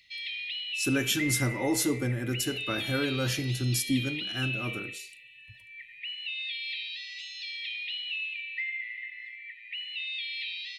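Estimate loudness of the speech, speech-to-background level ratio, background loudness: -30.0 LUFS, 4.5 dB, -34.5 LUFS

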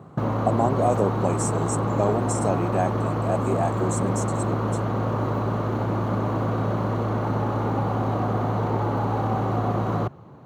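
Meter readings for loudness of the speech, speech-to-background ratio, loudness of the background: -27.5 LUFS, -2.0 dB, -25.5 LUFS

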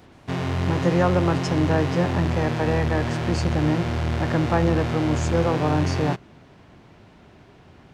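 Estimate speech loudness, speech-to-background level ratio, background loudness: -24.5 LUFS, 1.5 dB, -26.0 LUFS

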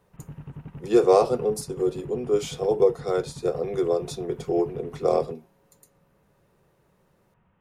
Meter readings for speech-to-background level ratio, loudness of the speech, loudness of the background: 17.5 dB, -24.5 LUFS, -42.0 LUFS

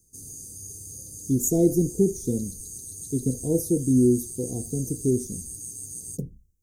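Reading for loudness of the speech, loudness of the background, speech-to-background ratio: -24.5 LUFS, -36.5 LUFS, 12.0 dB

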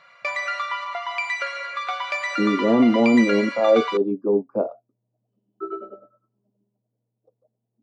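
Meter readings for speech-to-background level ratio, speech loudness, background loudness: 7.0 dB, -20.0 LUFS, -27.0 LUFS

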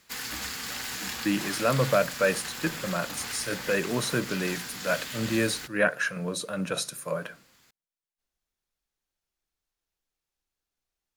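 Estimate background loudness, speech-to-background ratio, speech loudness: -34.5 LUFS, 5.5 dB, -29.0 LUFS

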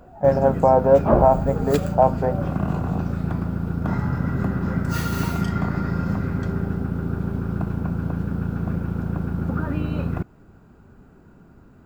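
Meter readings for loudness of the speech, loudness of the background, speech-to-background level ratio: -19.0 LUFS, -25.5 LUFS, 6.5 dB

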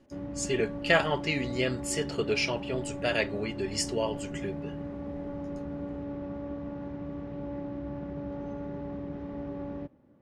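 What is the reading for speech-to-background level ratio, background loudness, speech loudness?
8.0 dB, -38.0 LUFS, -30.0 LUFS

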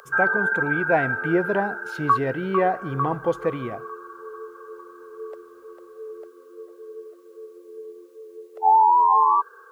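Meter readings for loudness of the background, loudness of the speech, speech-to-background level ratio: -22.0 LUFS, -26.0 LUFS, -4.0 dB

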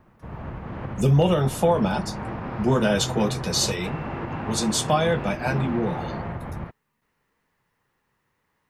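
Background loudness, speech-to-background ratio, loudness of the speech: -32.5 LUFS, 9.0 dB, -23.5 LUFS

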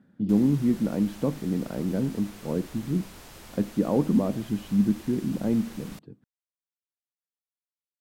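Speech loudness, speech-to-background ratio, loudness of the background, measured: -27.0 LUFS, 19.0 dB, -46.0 LUFS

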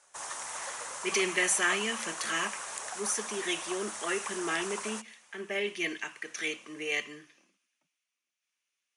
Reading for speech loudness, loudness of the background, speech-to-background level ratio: -32.0 LUFS, -38.0 LUFS, 6.0 dB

